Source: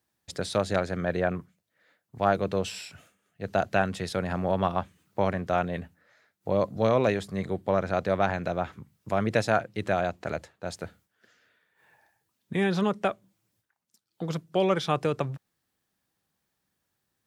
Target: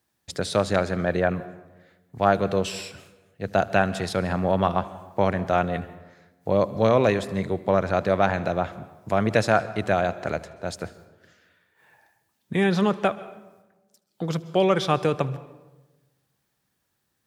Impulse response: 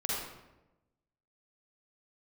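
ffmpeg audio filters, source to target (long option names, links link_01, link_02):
-filter_complex "[0:a]asplit=2[link_01][link_02];[1:a]atrim=start_sample=2205,asetrate=37926,aresample=44100,adelay=76[link_03];[link_02][link_03]afir=irnorm=-1:irlink=0,volume=-22.5dB[link_04];[link_01][link_04]amix=inputs=2:normalize=0,volume=4dB"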